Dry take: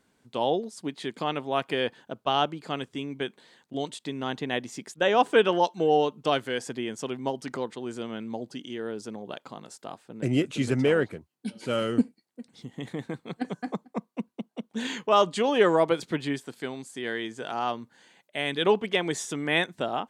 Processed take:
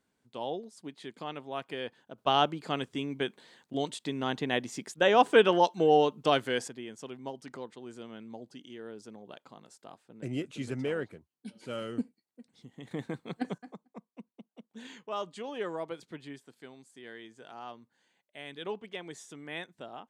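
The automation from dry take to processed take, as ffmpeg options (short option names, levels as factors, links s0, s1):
-af "asetnsamples=n=441:p=0,asendcmd='2.18 volume volume -0.5dB;6.68 volume volume -10dB;12.91 volume volume -2.5dB;13.58 volume volume -15dB',volume=0.316"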